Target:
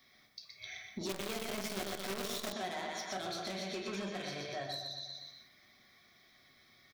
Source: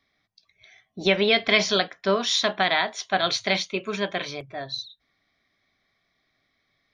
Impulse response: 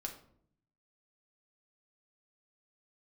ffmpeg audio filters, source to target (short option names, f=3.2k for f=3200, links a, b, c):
-filter_complex "[0:a]aecho=1:1:122|244|366|488|610:0.447|0.192|0.0826|0.0355|0.0153,acrossover=split=670|2100[a][b][c];[a]acompressor=threshold=-23dB:ratio=4[d];[b]acompressor=threshold=-36dB:ratio=4[e];[c]acompressor=threshold=-39dB:ratio=4[f];[d][e][f]amix=inputs=3:normalize=0,asoftclip=type=tanh:threshold=-27dB,highpass=f=50:p=1,aemphasis=mode=production:type=50kf,acompressor=threshold=-46dB:ratio=4[g];[1:a]atrim=start_sample=2205[h];[g][h]afir=irnorm=-1:irlink=0,asettb=1/sr,asplit=3[i][j][k];[i]atrim=end=1.094[l];[j]atrim=start=1.09:end=2.53,asetpts=PTS-STARTPTS,afade=t=in:d=0.004:c=qsin,afade=t=out:st=1.436:d=0.004:c=qsin,acrusher=bits=8:dc=4:mix=0:aa=0.000001[m];[k]atrim=start=2.526[n];[l][m]acrossfade=d=0.004:c1=hsin:c2=qsin[o];[o][n]acrossfade=d=0.004:c1=qsin:c2=hsin,volume=6.5dB"